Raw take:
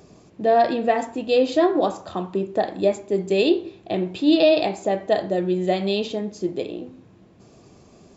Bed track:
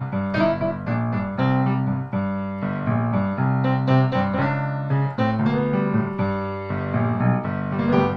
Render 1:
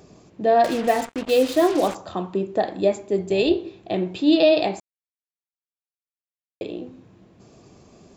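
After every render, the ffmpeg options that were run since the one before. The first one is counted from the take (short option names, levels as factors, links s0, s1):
-filter_complex "[0:a]asettb=1/sr,asplit=3[s0][s1][s2];[s0]atrim=end=0.644[s3];[s1]atrim=start=0.64:end=1.95,asetpts=PTS-STARTPTS,afade=t=in:d=0.004:c=qsin,afade=t=out:st=1.306:d=0.004:c=qsin,acrusher=bits=4:mix=0:aa=0.5[s4];[s2]atrim=start=1.946[s5];[s3][s4]acrossfade=d=0.004:c1=hsin:c2=qsin[s6];[s6][s5]acrossfade=d=0.004:c1=qsin:c2=hsin,asplit=3[s7][s8][s9];[s7]afade=t=out:st=3.17:d=0.02[s10];[s8]tremolo=f=270:d=0.261,afade=t=in:st=3.17:d=0.02,afade=t=out:st=3.58:d=0.02[s11];[s9]afade=t=in:st=3.58:d=0.02[s12];[s10][s11][s12]amix=inputs=3:normalize=0,asplit=3[s13][s14][s15];[s13]atrim=end=4.8,asetpts=PTS-STARTPTS,afade=t=out:st=4.796:d=0.004:c=hsin[s16];[s14]atrim=start=4.8:end=6.61,asetpts=PTS-STARTPTS,volume=0[s17];[s15]atrim=start=6.61,asetpts=PTS-STARTPTS,afade=t=in:d=0.004:c=hsin[s18];[s16][s17][s18]concat=n=3:v=0:a=1"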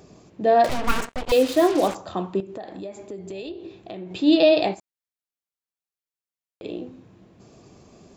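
-filter_complex "[0:a]asettb=1/sr,asplit=3[s0][s1][s2];[s0]atrim=end=0.694[s3];[s1]atrim=start=0.69:end=1.32,asetpts=PTS-STARTPTS,afade=t=in:d=0.004:c=qsin,afade=t=out:st=0.626:d=0.004:c=qsin,aeval=exprs='abs(val(0))':c=same[s4];[s2]atrim=start=1.316[s5];[s3][s4]acrossfade=d=0.004:c1=hsin:c2=qsin[s6];[s6][s5]acrossfade=d=0.004:c1=qsin:c2=hsin,asettb=1/sr,asplit=3[s7][s8][s9];[s7]atrim=end=2.404[s10];[s8]atrim=start=2.4:end=4.11,asetpts=PTS-STARTPTS,afade=t=in:d=0.004:c=qsin,afade=t=out:st=1.706:d=0.004:c=qsin,acompressor=threshold=0.0224:ratio=5:attack=3.2:release=140:knee=1:detection=peak[s11];[s9]atrim=start=4.106[s12];[s10][s11]acrossfade=d=0.004:c1=hsin:c2=qsin[s13];[s13][s12]acrossfade=d=0.004:c1=qsin:c2=hsin,asplit=3[s14][s15][s16];[s14]afade=t=out:st=4.73:d=0.02[s17];[s15]acompressor=threshold=0.0112:ratio=4:attack=3.2:release=140:knee=1:detection=peak,afade=t=in:st=4.73:d=0.02,afade=t=out:st=6.63:d=0.02[s18];[s16]afade=t=in:st=6.63:d=0.02[s19];[s17][s18][s19]amix=inputs=3:normalize=0"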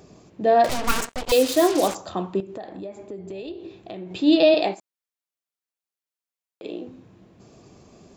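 -filter_complex "[0:a]asettb=1/sr,asplit=3[s0][s1][s2];[s0]atrim=end=0.694[s3];[s1]atrim=start=0.69:end=2.1,asetpts=PTS-STARTPTS,afade=t=in:d=0.004:c=qsin,afade=t=out:st=1.406:d=0.004:c=qsin,bass=f=250:g=-2,treble=f=4000:g=8[s4];[s2]atrim=start=2.096[s5];[s3][s4]acrossfade=d=0.004:c1=hsin:c2=qsin[s6];[s6][s5]acrossfade=d=0.004:c1=qsin:c2=hsin,asettb=1/sr,asplit=3[s7][s8][s9];[s7]atrim=end=2.674[s10];[s8]atrim=start=2.67:end=3.48,asetpts=PTS-STARTPTS,afade=t=in:d=0.004:c=qsin,afade=t=out:st=0.806:d=0.004:c=qsin,highshelf=f=3400:g=-9[s11];[s9]atrim=start=3.476[s12];[s10][s11]acrossfade=d=0.004:c1=hsin:c2=qsin[s13];[s13][s12]acrossfade=d=0.004:c1=qsin:c2=hsin,asettb=1/sr,asplit=3[s14][s15][s16];[s14]atrim=end=4.544[s17];[s15]atrim=start=4.54:end=6.87,asetpts=PTS-STARTPTS,afade=t=in:d=0.004:c=qsin,afade=t=out:st=2.326:d=0.004:c=qsin,highpass=220[s18];[s16]atrim=start=6.866[s19];[s17][s18]acrossfade=d=0.004:c1=hsin:c2=qsin[s20];[s20][s19]acrossfade=d=0.004:c1=qsin:c2=hsin"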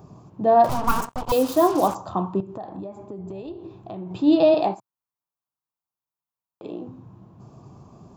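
-af "equalizer=f=125:t=o:w=1:g=10,equalizer=f=500:t=o:w=1:g=-5,equalizer=f=1000:t=o:w=1:g=11,equalizer=f=2000:t=o:w=1:g=-12,equalizer=f=4000:t=o:w=1:g=-6,equalizer=f=8000:t=o:w=1:g=-7"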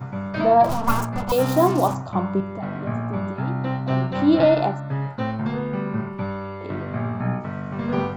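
-filter_complex "[1:a]volume=0.562[s0];[0:a][s0]amix=inputs=2:normalize=0"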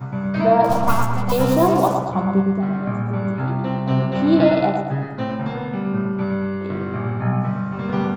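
-filter_complex "[0:a]asplit=2[s0][s1];[s1]adelay=15,volume=0.501[s2];[s0][s2]amix=inputs=2:normalize=0,asplit=2[s3][s4];[s4]adelay=113,lowpass=f=2800:p=1,volume=0.631,asplit=2[s5][s6];[s6]adelay=113,lowpass=f=2800:p=1,volume=0.53,asplit=2[s7][s8];[s8]adelay=113,lowpass=f=2800:p=1,volume=0.53,asplit=2[s9][s10];[s10]adelay=113,lowpass=f=2800:p=1,volume=0.53,asplit=2[s11][s12];[s12]adelay=113,lowpass=f=2800:p=1,volume=0.53,asplit=2[s13][s14];[s14]adelay=113,lowpass=f=2800:p=1,volume=0.53,asplit=2[s15][s16];[s16]adelay=113,lowpass=f=2800:p=1,volume=0.53[s17];[s3][s5][s7][s9][s11][s13][s15][s17]amix=inputs=8:normalize=0"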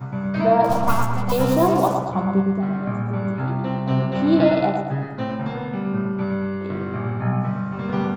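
-af "volume=0.841"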